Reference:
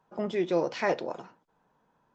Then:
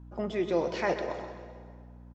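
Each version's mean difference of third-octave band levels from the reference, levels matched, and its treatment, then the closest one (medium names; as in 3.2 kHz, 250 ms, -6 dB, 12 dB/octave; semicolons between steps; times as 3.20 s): 4.0 dB: hum 60 Hz, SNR 14 dB; feedback delay 129 ms, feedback 51%, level -13 dB; plate-style reverb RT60 1.9 s, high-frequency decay 0.75×, pre-delay 90 ms, DRR 10 dB; trim -1.5 dB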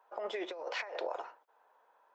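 9.0 dB: high-pass 520 Hz 24 dB/octave; peaking EQ 6.4 kHz -9.5 dB 2 oct; compressor with a negative ratio -39 dBFS, ratio -1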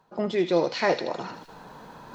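3.0 dB: peaking EQ 4.2 kHz +9.5 dB 0.27 oct; reverse; upward compressor, threshold -31 dBFS; reverse; feedback echo behind a high-pass 78 ms, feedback 57%, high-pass 2.2 kHz, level -7.5 dB; trim +4 dB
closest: third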